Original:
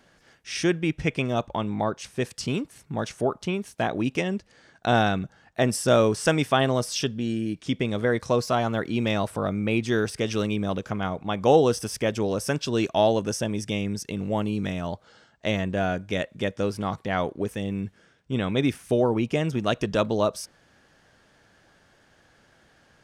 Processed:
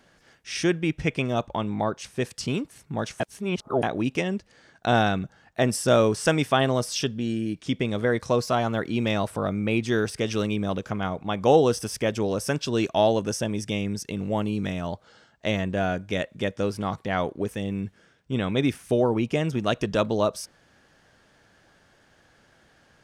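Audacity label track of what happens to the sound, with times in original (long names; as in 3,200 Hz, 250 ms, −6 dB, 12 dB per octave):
3.200000	3.830000	reverse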